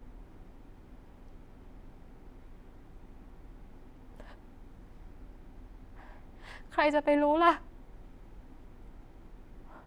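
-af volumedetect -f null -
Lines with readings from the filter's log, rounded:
mean_volume: -35.9 dB
max_volume: -11.0 dB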